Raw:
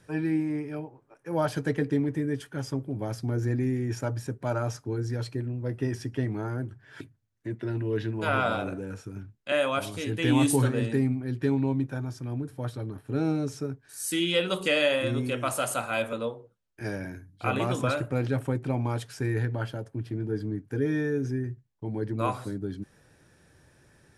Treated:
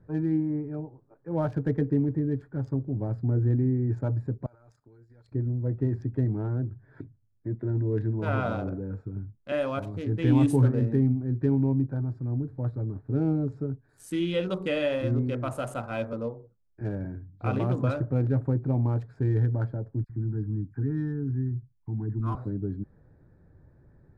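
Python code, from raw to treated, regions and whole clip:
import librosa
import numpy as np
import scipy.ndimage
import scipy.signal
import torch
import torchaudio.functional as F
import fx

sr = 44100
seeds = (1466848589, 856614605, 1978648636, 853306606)

y = fx.chain(x, sr, fx.pre_emphasis(coefficient=0.97),
    fx.transient(attack_db=4, sustain_db=10),
    fx.level_steps(step_db=11), at=(4.46, 5.32))
y = fx.chain(y, sr, fx.fixed_phaser(hz=1300.0, stages=4),
    fx.dispersion(late='lows', ms=54.0, hz=1700.0), at=(20.04, 22.35))
y = fx.wiener(y, sr, points=15)
y = fx.tilt_eq(y, sr, slope=-3.0)
y = y * 10.0 ** (-4.5 / 20.0)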